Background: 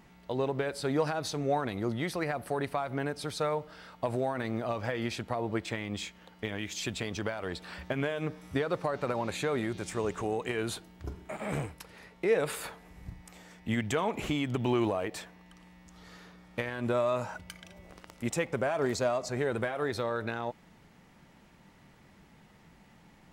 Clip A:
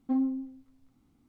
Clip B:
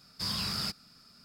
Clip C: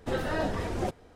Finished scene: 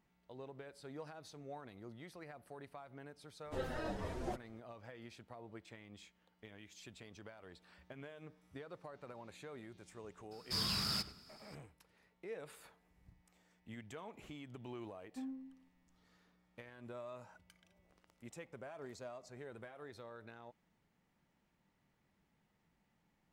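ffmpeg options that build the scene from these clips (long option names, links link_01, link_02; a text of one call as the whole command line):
ffmpeg -i bed.wav -i cue0.wav -i cue1.wav -i cue2.wav -filter_complex "[0:a]volume=-20dB[link_01];[3:a]asplit=2[link_02][link_03];[link_03]adelay=6.8,afreqshift=-2[link_04];[link_02][link_04]amix=inputs=2:normalize=1[link_05];[2:a]asplit=2[link_06][link_07];[link_07]adelay=98,lowpass=frequency=3600:poles=1,volume=-15dB,asplit=2[link_08][link_09];[link_09]adelay=98,lowpass=frequency=3600:poles=1,volume=0.37,asplit=2[link_10][link_11];[link_11]adelay=98,lowpass=frequency=3600:poles=1,volume=0.37[link_12];[link_06][link_08][link_10][link_12]amix=inputs=4:normalize=0[link_13];[link_05]atrim=end=1.15,asetpts=PTS-STARTPTS,volume=-8.5dB,afade=type=in:duration=0.004:curve=hsin,afade=type=out:start_time=1.146:duration=0.004:curve=hsin,adelay=152145S[link_14];[link_13]atrim=end=1.24,asetpts=PTS-STARTPTS,volume=-3.5dB,afade=type=in:duration=0.004:curve=hsin,afade=type=out:start_time=1.236:duration=0.004:curve=hsin,adelay=10310[link_15];[1:a]atrim=end=1.28,asetpts=PTS-STARTPTS,volume=-17.5dB,afade=type=in:duration=0.004:curve=hsin,afade=type=out:start_time=1.276:duration=0.004:curve=hsin,adelay=15070[link_16];[link_01][link_14][link_15][link_16]amix=inputs=4:normalize=0" out.wav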